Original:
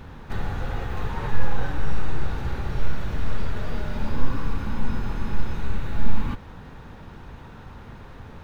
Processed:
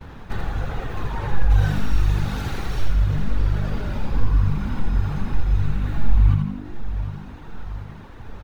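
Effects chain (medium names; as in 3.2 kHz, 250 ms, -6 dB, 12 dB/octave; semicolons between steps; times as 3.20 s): reverb removal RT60 1.4 s; 1.50–2.85 s: treble shelf 2.6 kHz +11.5 dB; feedback delay 743 ms, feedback 43%, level -15.5 dB; in parallel at -0.5 dB: compression, threshold -24 dBFS, peak gain reduction 15.5 dB; on the sum: expander -36 dBFS; on a send: frequency-shifting echo 82 ms, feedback 52%, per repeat -50 Hz, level -3.5 dB; on the sum: trim -3 dB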